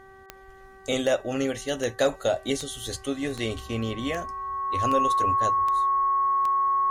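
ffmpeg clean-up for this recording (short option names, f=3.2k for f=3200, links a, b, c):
-af "adeclick=t=4,bandreject=f=385:t=h:w=4,bandreject=f=770:t=h:w=4,bandreject=f=1.155k:t=h:w=4,bandreject=f=1.54k:t=h:w=4,bandreject=f=1.925k:t=h:w=4,bandreject=f=1.1k:w=30"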